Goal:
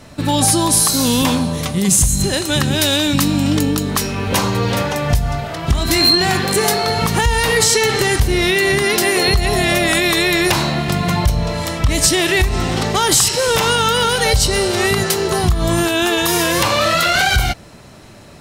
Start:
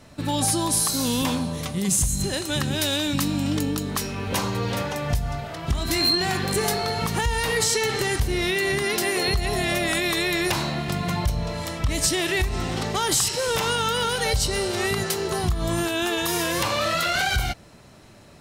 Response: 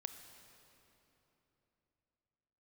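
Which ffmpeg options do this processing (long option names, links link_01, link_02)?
-filter_complex "[0:a]asettb=1/sr,asplit=3[link_01][link_02][link_03];[link_01]atrim=end=6.414[link_04];[link_02]atrim=start=6.41:end=6.87,asetpts=PTS-STARTPTS,afade=type=in:duration=0.004:curve=qsin,afade=type=out:start_time=0.456:duration=0.004:curve=qsin,highpass=frequency=170:poles=1[link_05];[link_03]atrim=start=6.866[link_06];[link_04][link_05]acrossfade=duration=0.004:curve1=hsin:curve2=qsin[link_07];[link_07][link_06]acrossfade=duration=0.004:curve1=qsin:curve2=hsin,volume=8.5dB"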